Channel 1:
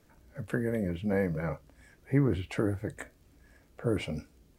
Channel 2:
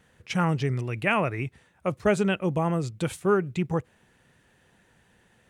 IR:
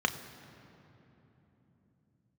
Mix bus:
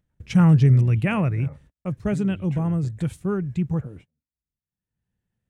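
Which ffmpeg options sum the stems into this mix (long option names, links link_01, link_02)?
-filter_complex "[0:a]highshelf=frequency=9200:gain=-10.5,bandreject=frequency=4600:width=6.1,acompressor=threshold=-36dB:ratio=6,volume=-6.5dB[link_01];[1:a]agate=range=-51dB:threshold=-54dB:ratio=16:detection=peak,lowshelf=frequency=250:gain=6,volume=-2.5dB,afade=type=out:start_time=0.92:duration=0.65:silence=0.473151,asplit=2[link_02][link_03];[link_03]apad=whole_len=202389[link_04];[link_01][link_04]sidechaingate=range=-43dB:threshold=-59dB:ratio=16:detection=peak[link_05];[link_05][link_02]amix=inputs=2:normalize=0,bass=frequency=250:gain=12,treble=frequency=4000:gain=2,acompressor=mode=upward:threshold=-54dB:ratio=2.5"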